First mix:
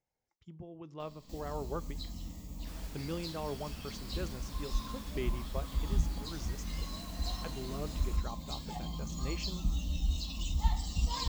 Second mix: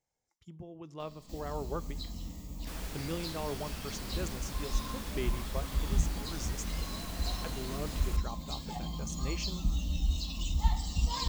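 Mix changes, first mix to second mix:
speech: remove distance through air 110 m; second sound +7.5 dB; reverb: on, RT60 2.9 s

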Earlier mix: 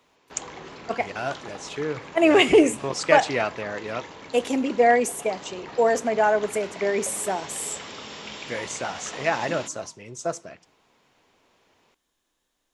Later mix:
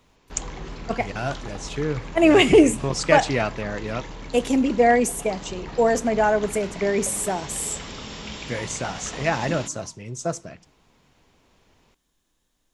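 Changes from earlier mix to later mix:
background: remove high-pass 72 Hz 24 dB/octave; master: add tone controls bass +11 dB, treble +3 dB

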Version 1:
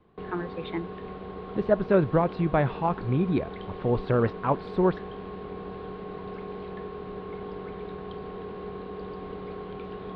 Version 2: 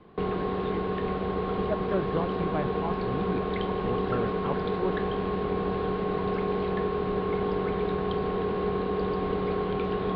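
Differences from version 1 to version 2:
speech -9.0 dB; background +9.5 dB

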